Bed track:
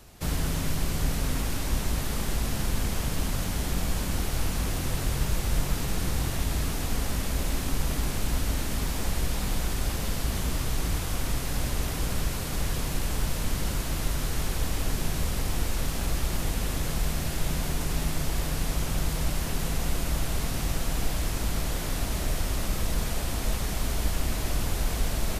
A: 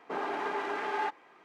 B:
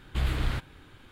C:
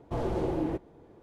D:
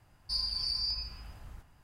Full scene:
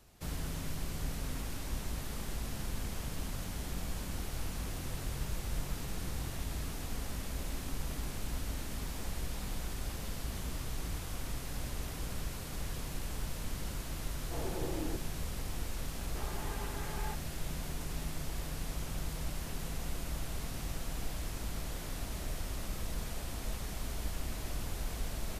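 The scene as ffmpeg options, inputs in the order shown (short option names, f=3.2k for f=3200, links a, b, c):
-filter_complex "[0:a]volume=-10.5dB[a];[3:a]atrim=end=1.22,asetpts=PTS-STARTPTS,volume=-9.5dB,afade=t=in:d=0.004:c=hsin,afade=t=out:st=1.216:d=0.004:c=hsin,adelay=14200[b];[1:a]atrim=end=1.44,asetpts=PTS-STARTPTS,volume=-12.5dB,afade=t=in:d=0.004:c=hsin,afade=t=out:st=1.436:d=0.004:c=hsin,adelay=16050[c];[a][b][c]amix=inputs=3:normalize=0"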